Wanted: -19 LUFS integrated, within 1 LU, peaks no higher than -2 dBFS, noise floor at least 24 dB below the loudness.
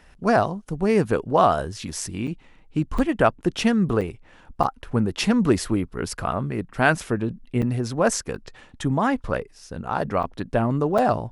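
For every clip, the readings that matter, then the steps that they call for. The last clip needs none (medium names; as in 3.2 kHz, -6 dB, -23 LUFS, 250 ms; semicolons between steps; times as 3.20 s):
dropouts 8; longest dropout 5.6 ms; loudness -23.5 LUFS; peak level -4.0 dBFS; loudness target -19.0 LUFS
-> interpolate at 2.27/2.98/4.01/4.63/7.62/8.35/10.23/10.98 s, 5.6 ms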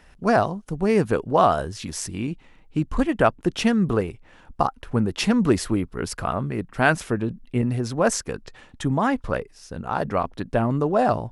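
dropouts 0; loudness -23.5 LUFS; peak level -4.0 dBFS; loudness target -19.0 LUFS
-> trim +4.5 dB; peak limiter -2 dBFS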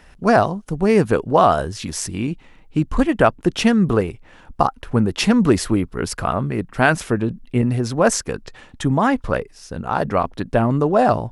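loudness -19.5 LUFS; peak level -2.0 dBFS; noise floor -48 dBFS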